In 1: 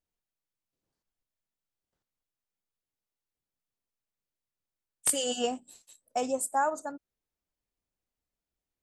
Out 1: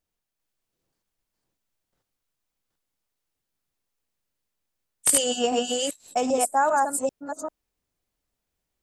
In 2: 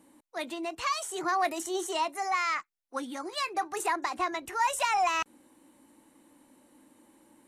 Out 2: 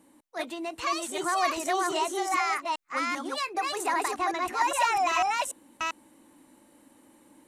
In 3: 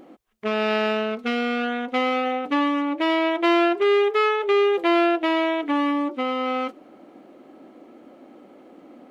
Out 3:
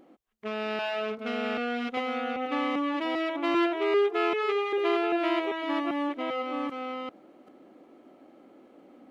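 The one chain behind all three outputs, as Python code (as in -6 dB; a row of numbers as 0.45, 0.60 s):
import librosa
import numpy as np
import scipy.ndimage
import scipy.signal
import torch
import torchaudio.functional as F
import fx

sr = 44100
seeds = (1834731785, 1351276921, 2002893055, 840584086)

y = fx.reverse_delay(x, sr, ms=394, wet_db=-1)
y = y * 10.0 ** (-30 / 20.0) / np.sqrt(np.mean(np.square(y)))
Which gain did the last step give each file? +5.5, +0.5, -9.5 dB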